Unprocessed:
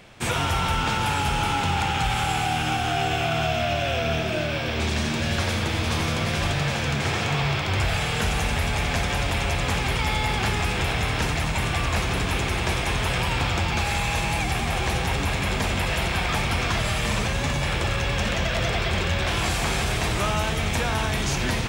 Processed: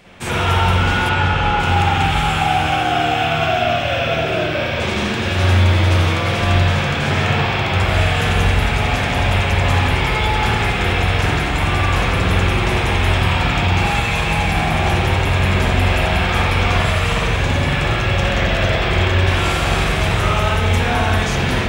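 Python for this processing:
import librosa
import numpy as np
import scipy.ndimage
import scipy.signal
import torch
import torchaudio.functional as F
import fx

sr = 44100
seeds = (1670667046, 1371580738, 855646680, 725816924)

y = fx.air_absorb(x, sr, metres=97.0, at=(1.09, 1.6))
y = fx.rev_spring(y, sr, rt60_s=1.2, pass_ms=(44, 55), chirp_ms=30, drr_db=-6.5)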